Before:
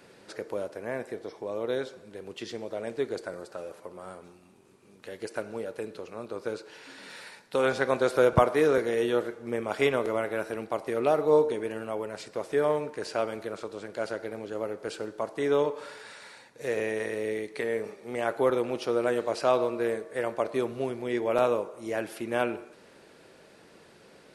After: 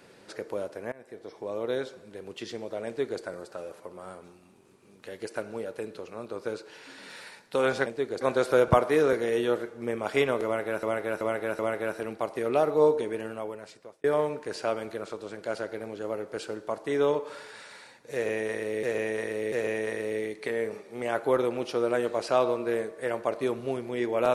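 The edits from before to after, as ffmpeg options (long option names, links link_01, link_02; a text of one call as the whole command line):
ffmpeg -i in.wav -filter_complex "[0:a]asplit=10[link_01][link_02][link_03][link_04][link_05][link_06][link_07][link_08][link_09][link_10];[link_01]atrim=end=0.92,asetpts=PTS-STARTPTS,afade=type=out:start_time=0.916:duration=0.004:curve=hsin:silence=0.0668344[link_11];[link_02]atrim=start=0.92:end=7.862,asetpts=PTS-STARTPTS,afade=type=in:duration=0.55:silence=0.0668344[link_12];[link_03]atrim=start=2.858:end=3.212[link_13];[link_04]atrim=start=7.858:end=10.482[link_14];[link_05]atrim=start=10.098:end=10.482[link_15];[link_06]atrim=start=10.098:end=10.482[link_16];[link_07]atrim=start=10.098:end=12.55,asetpts=PTS-STARTPTS,afade=type=out:start_time=1.642:duration=0.81[link_17];[link_08]atrim=start=12.55:end=17.342,asetpts=PTS-STARTPTS,afade=type=in:duration=0.004:curve=hsin[link_18];[link_09]atrim=start=16.648:end=17.342[link_19];[link_10]atrim=start=16.648[link_20];[link_11][link_12]concat=n=2:v=0:a=1[link_21];[link_21][link_13]acrossfade=duration=0.004:curve1=hsin:curve2=hsin[link_22];[link_22][link_14]acrossfade=duration=0.004:curve1=hsin:curve2=hsin[link_23];[link_23][link_15]acrossfade=duration=0.004:curve1=hsin:curve2=hsin[link_24];[link_24][link_16]acrossfade=duration=0.004:curve1=hsin:curve2=hsin[link_25];[link_17][link_18]concat=n=2:v=0:a=1[link_26];[link_25][link_26]acrossfade=duration=0.004:curve1=hsin:curve2=hsin[link_27];[link_27][link_19]acrossfade=duration=0.004:curve1=hsin:curve2=hsin[link_28];[link_28][link_20]acrossfade=duration=0.004:curve1=hsin:curve2=hsin" out.wav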